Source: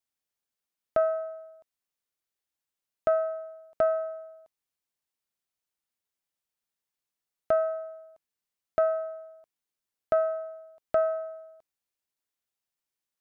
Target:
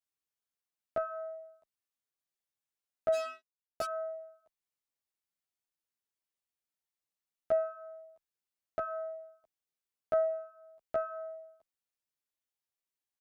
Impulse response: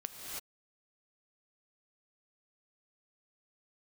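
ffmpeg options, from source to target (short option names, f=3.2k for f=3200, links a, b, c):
-filter_complex "[0:a]asplit=3[a][b][c];[a]afade=t=out:st=3.12:d=0.02[d];[b]acrusher=bits=4:mix=0:aa=0.5,afade=t=in:st=3.12:d=0.02,afade=t=out:st=3.84:d=0.02[e];[c]afade=t=in:st=3.84:d=0.02[f];[d][e][f]amix=inputs=3:normalize=0,asplit=2[g][h];[h]adelay=11.2,afreqshift=1.8[i];[g][i]amix=inputs=2:normalize=1,volume=-3dB"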